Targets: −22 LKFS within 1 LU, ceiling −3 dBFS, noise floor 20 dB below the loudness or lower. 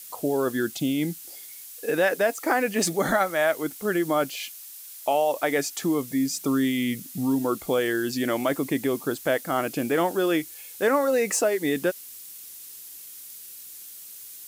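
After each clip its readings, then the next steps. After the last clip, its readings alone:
background noise floor −43 dBFS; target noise floor −45 dBFS; integrated loudness −25.0 LKFS; sample peak −10.5 dBFS; target loudness −22.0 LKFS
→ broadband denoise 6 dB, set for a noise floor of −43 dBFS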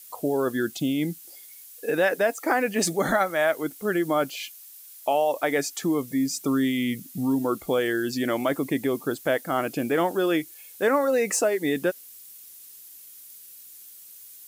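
background noise floor −47 dBFS; integrated loudness −25.5 LKFS; sample peak −10.5 dBFS; target loudness −22.0 LKFS
→ level +3.5 dB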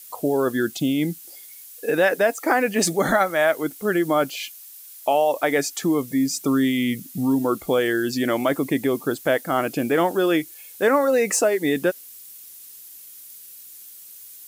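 integrated loudness −22.0 LKFS; sample peak −7.0 dBFS; background noise floor −43 dBFS

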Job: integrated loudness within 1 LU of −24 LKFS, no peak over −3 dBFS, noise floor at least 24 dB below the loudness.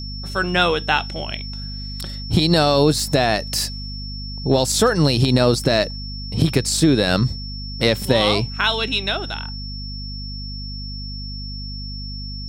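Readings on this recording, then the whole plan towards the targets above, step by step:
mains hum 50 Hz; hum harmonics up to 250 Hz; level of the hum −29 dBFS; interfering tone 5,400 Hz; level of the tone −33 dBFS; integrated loudness −19.5 LKFS; sample peak −3.0 dBFS; target loudness −24.0 LKFS
→ hum removal 50 Hz, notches 5
notch filter 5,400 Hz, Q 30
level −4.5 dB

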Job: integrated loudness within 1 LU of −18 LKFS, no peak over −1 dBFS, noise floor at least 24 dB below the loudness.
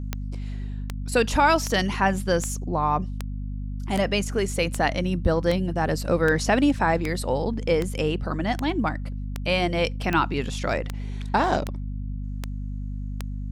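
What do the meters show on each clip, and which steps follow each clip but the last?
number of clicks 18; mains hum 50 Hz; hum harmonics up to 250 Hz; level of the hum −28 dBFS; integrated loudness −25.5 LKFS; sample peak −7.5 dBFS; target loudness −18.0 LKFS
→ click removal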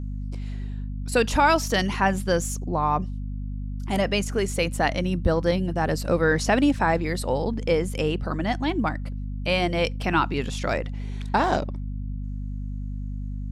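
number of clicks 0; mains hum 50 Hz; hum harmonics up to 250 Hz; level of the hum −28 dBFS
→ hum removal 50 Hz, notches 5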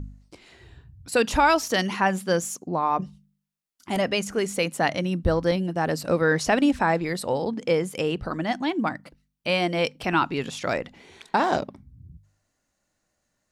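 mains hum none found; integrated loudness −24.5 LKFS; sample peak −9.0 dBFS; target loudness −18.0 LKFS
→ level +6.5 dB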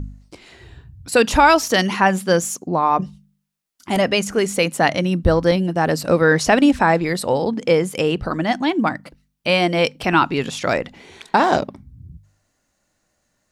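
integrated loudness −18.0 LKFS; sample peak −2.5 dBFS; background noise floor −70 dBFS

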